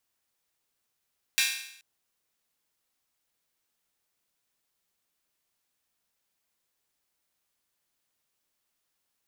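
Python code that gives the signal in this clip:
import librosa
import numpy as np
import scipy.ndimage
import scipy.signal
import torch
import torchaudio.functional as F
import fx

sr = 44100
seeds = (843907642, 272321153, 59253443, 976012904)

y = fx.drum_hat_open(sr, length_s=0.43, from_hz=2200.0, decay_s=0.72)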